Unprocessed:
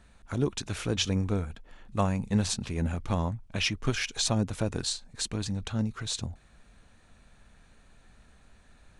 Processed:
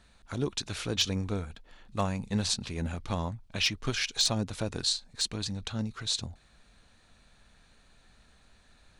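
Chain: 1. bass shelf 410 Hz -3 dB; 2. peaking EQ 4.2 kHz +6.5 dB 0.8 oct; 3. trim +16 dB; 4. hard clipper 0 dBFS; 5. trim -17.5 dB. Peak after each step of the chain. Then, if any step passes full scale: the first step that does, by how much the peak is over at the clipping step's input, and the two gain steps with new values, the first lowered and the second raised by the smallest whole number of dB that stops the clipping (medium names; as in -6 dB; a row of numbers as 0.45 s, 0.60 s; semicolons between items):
-13.5 dBFS, -11.0 dBFS, +5.0 dBFS, 0.0 dBFS, -17.5 dBFS; step 3, 5.0 dB; step 3 +11 dB, step 5 -12.5 dB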